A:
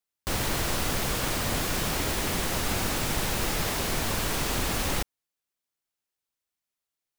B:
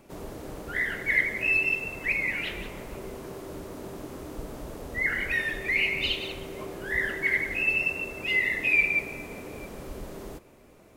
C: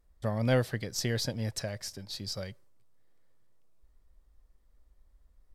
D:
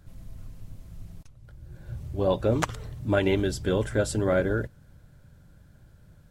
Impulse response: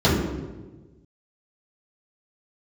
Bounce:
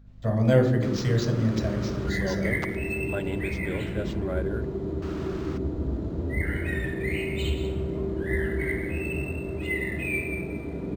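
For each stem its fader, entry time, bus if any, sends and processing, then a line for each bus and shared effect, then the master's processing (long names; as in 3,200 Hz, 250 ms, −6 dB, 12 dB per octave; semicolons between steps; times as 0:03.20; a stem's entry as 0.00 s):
−18.0 dB, 0.55 s, muted 0:02.10–0:05.02, no send, parametric band 1,300 Hz +11.5 dB 0.77 octaves
−14.5 dB, 1.35 s, send −9 dB, low-shelf EQ 140 Hz +5 dB
−1.0 dB, 0.00 s, send −18 dB, low-pass filter 10,000 Hz; low-shelf EQ 130 Hz −9 dB
−8.5 dB, 0.00 s, no send, no processing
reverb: on, RT60 1.3 s, pre-delay 3 ms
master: mains hum 50 Hz, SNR 24 dB; linearly interpolated sample-rate reduction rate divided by 4×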